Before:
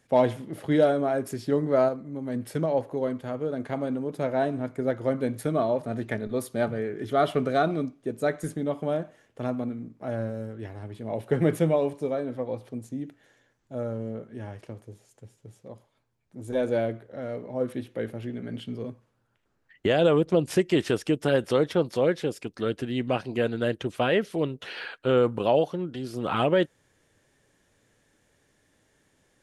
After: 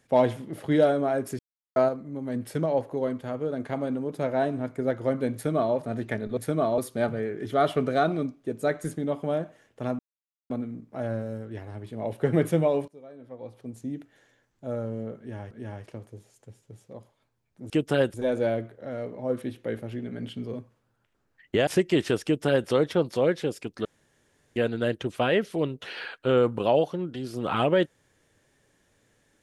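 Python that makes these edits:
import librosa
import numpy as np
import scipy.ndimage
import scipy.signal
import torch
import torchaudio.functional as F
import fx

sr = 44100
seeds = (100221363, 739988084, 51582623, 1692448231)

y = fx.edit(x, sr, fx.silence(start_s=1.39, length_s=0.37),
    fx.duplicate(start_s=5.34, length_s=0.41, to_s=6.37),
    fx.insert_silence(at_s=9.58, length_s=0.51),
    fx.fade_in_from(start_s=11.96, length_s=0.99, curve='qua', floor_db=-20.0),
    fx.repeat(start_s=14.26, length_s=0.33, count=2),
    fx.cut(start_s=19.98, length_s=0.49),
    fx.duplicate(start_s=21.04, length_s=0.44, to_s=16.45),
    fx.room_tone_fill(start_s=22.65, length_s=0.71), tone=tone)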